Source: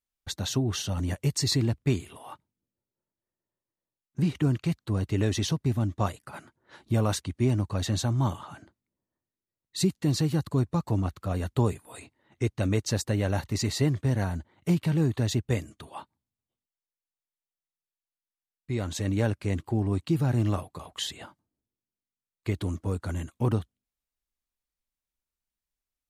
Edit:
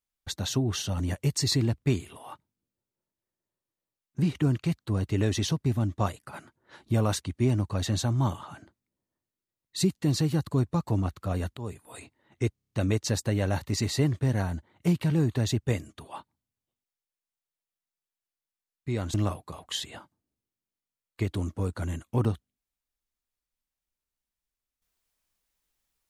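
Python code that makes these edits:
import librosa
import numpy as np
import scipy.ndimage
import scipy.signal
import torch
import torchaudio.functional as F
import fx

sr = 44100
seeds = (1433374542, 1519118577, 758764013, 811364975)

y = fx.edit(x, sr, fx.fade_in_from(start_s=11.57, length_s=0.38, floor_db=-21.0),
    fx.stutter(start_s=12.53, slice_s=0.03, count=7),
    fx.cut(start_s=18.96, length_s=1.45), tone=tone)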